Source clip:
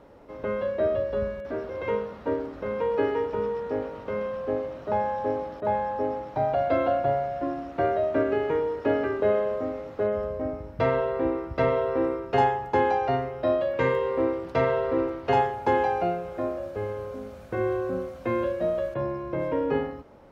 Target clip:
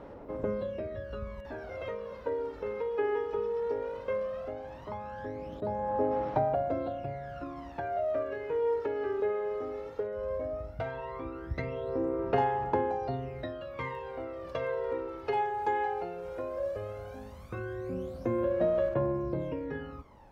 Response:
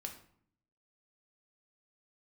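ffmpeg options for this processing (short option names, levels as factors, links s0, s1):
-af "acompressor=threshold=0.0355:ratio=6,aphaser=in_gain=1:out_gain=1:delay=2.4:decay=0.69:speed=0.16:type=sinusoidal,volume=0.562"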